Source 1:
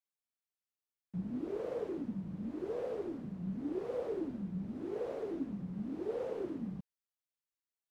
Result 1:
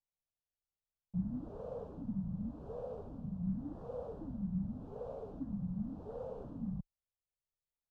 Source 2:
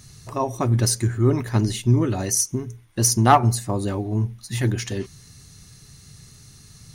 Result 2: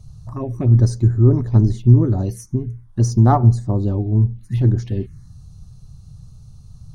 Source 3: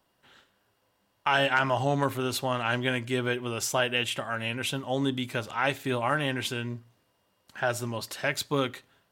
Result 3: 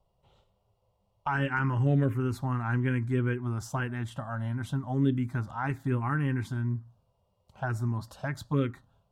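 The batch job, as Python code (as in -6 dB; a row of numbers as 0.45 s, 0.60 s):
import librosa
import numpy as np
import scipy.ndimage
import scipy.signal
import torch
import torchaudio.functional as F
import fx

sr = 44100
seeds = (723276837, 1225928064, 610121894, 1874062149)

y = fx.tilt_eq(x, sr, slope=-3.5)
y = fx.env_phaser(y, sr, low_hz=280.0, high_hz=2700.0, full_db=-10.0)
y = y * librosa.db_to_amplitude(-3.0)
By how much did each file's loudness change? -2.5 LU, +4.5 LU, -2.0 LU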